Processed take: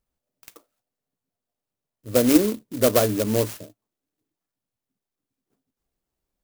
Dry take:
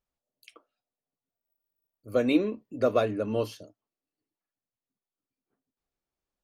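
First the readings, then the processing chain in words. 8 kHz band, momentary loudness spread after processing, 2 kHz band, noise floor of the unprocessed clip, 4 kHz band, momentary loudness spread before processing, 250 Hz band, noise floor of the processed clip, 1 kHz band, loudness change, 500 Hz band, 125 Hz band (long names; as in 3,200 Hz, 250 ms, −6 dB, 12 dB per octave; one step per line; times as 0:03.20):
can't be measured, 10 LU, +4.5 dB, below −85 dBFS, +9.5 dB, 8 LU, +7.0 dB, below −85 dBFS, +4.0 dB, +7.0 dB, +5.0 dB, +9.0 dB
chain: low-pass with resonance 5,300 Hz, resonance Q 2.5
low-shelf EQ 320 Hz +5.5 dB
converter with an unsteady clock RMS 0.11 ms
level +4 dB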